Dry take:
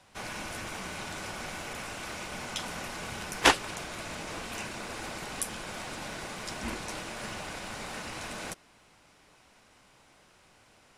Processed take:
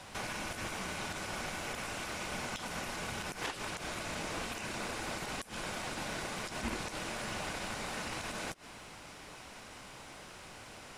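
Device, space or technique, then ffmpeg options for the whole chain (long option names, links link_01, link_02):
de-esser from a sidechain: -filter_complex "[0:a]asplit=2[link_01][link_02];[link_02]highpass=6100,apad=whole_len=484122[link_03];[link_01][link_03]sidechaincompress=threshold=-56dB:ratio=10:attack=1.2:release=78,volume=10.5dB"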